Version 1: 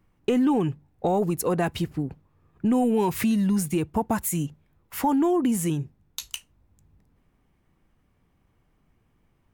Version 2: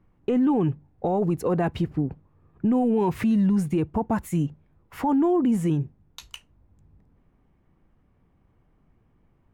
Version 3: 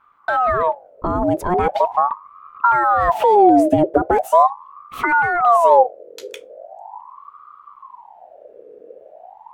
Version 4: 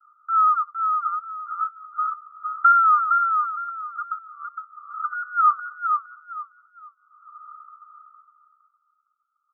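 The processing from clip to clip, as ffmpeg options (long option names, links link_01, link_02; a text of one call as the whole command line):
ffmpeg -i in.wav -af "lowpass=frequency=1200:poles=1,alimiter=limit=-19.5dB:level=0:latency=1:release=23,volume=3.5dB" out.wav
ffmpeg -i in.wav -af "asubboost=boost=8.5:cutoff=140,aeval=exprs='val(0)*sin(2*PI*830*n/s+830*0.45/0.4*sin(2*PI*0.4*n/s))':channel_layout=same,volume=7dB" out.wav
ffmpeg -i in.wav -af "asuperpass=centerf=1300:order=12:qfactor=6.4,aecho=1:1:461|922|1383|1844:0.562|0.152|0.041|0.0111,volume=3.5dB" out.wav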